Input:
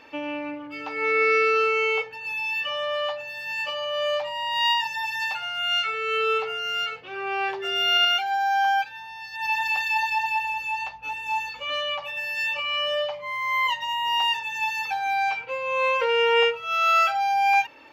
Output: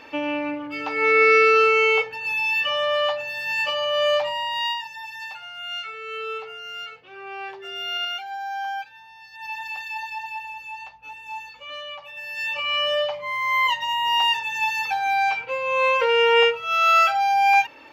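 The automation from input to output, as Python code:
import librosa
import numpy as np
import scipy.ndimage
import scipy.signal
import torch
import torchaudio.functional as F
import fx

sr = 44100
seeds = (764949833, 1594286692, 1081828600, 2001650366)

y = fx.gain(x, sr, db=fx.line((4.29, 5.0), (4.84, -7.5), (12.08, -7.5), (12.7, 3.0)))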